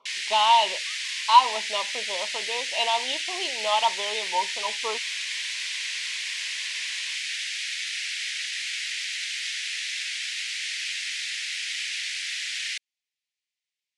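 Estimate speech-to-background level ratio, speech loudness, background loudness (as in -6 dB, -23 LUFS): 3.5 dB, -25.0 LUFS, -28.5 LUFS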